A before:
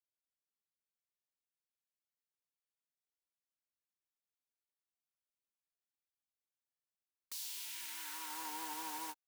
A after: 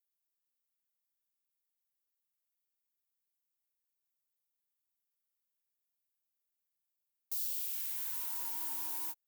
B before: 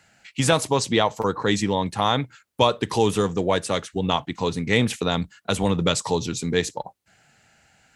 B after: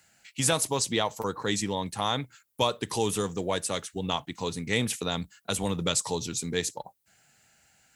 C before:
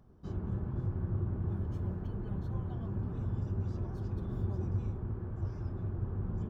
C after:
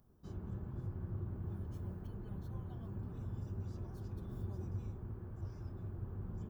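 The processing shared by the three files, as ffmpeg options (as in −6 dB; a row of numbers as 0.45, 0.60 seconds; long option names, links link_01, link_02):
-af "aemphasis=mode=production:type=50fm,volume=-7.5dB"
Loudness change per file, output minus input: +7.5, −6.0, −8.0 LU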